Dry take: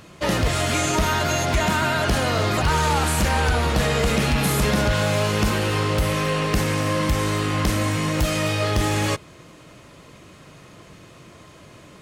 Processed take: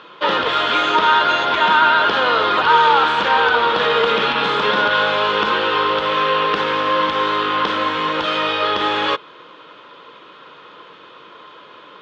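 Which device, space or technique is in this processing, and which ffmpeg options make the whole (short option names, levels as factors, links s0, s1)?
phone earpiece: -af "highpass=420,equalizer=f=470:t=q:w=4:g=6,equalizer=f=670:t=q:w=4:g=-7,equalizer=f=970:t=q:w=4:g=8,equalizer=f=1400:t=q:w=4:g=8,equalizer=f=2100:t=q:w=4:g=-4,equalizer=f=3400:t=q:w=4:g=9,lowpass=f=3700:w=0.5412,lowpass=f=3700:w=1.3066,volume=1.68"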